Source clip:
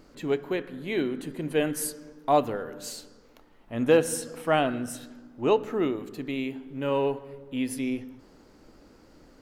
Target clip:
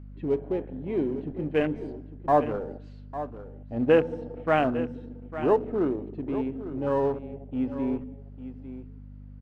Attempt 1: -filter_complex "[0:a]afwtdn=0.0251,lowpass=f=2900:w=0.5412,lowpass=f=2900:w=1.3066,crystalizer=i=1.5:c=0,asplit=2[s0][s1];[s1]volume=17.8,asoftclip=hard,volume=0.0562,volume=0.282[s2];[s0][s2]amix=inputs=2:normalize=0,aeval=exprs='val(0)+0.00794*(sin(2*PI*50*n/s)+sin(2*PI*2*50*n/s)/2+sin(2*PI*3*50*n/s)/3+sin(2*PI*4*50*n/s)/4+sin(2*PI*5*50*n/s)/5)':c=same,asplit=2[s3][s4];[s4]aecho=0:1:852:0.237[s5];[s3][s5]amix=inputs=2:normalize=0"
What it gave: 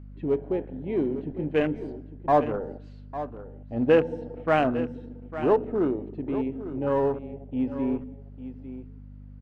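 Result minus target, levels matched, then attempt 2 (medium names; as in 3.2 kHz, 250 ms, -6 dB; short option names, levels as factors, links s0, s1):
overload inside the chain: distortion -5 dB
-filter_complex "[0:a]afwtdn=0.0251,lowpass=f=2900:w=0.5412,lowpass=f=2900:w=1.3066,crystalizer=i=1.5:c=0,asplit=2[s0][s1];[s1]volume=66.8,asoftclip=hard,volume=0.015,volume=0.282[s2];[s0][s2]amix=inputs=2:normalize=0,aeval=exprs='val(0)+0.00794*(sin(2*PI*50*n/s)+sin(2*PI*2*50*n/s)/2+sin(2*PI*3*50*n/s)/3+sin(2*PI*4*50*n/s)/4+sin(2*PI*5*50*n/s)/5)':c=same,asplit=2[s3][s4];[s4]aecho=0:1:852:0.237[s5];[s3][s5]amix=inputs=2:normalize=0"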